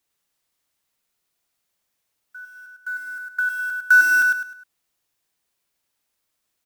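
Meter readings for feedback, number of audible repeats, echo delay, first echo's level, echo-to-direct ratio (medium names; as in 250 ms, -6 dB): 33%, 4, 103 ms, -4.0 dB, -3.5 dB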